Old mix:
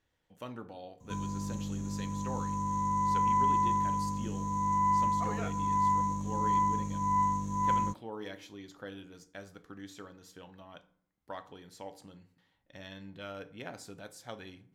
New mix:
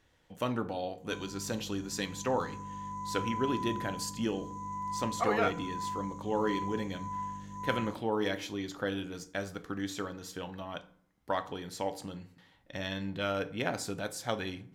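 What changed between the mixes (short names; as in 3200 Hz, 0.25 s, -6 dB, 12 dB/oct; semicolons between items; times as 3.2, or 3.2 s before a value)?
speech +10.5 dB; background -10.0 dB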